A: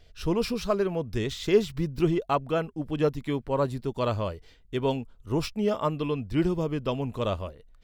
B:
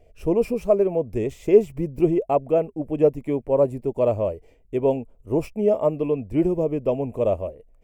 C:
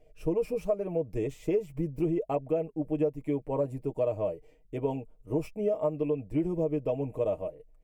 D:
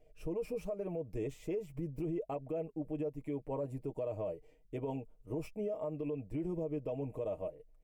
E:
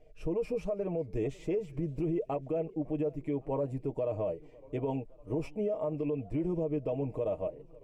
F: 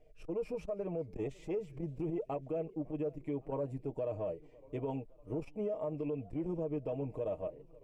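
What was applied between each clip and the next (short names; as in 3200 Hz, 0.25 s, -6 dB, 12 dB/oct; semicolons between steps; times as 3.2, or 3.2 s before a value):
EQ curve 170 Hz 0 dB, 620 Hz +10 dB, 1500 Hz -14 dB, 2400 Hz -1 dB, 3800 Hz -21 dB, 8000 Hz -2 dB
comb 6.5 ms, depth 68%; compressor 6:1, threshold -17 dBFS, peak gain reduction 9.5 dB; gain -7 dB
limiter -25.5 dBFS, peak gain reduction 8.5 dB; gain -4.5 dB
air absorption 60 m; warbling echo 0.558 s, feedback 55%, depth 201 cents, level -23.5 dB; gain +5.5 dB
core saturation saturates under 130 Hz; gain -4 dB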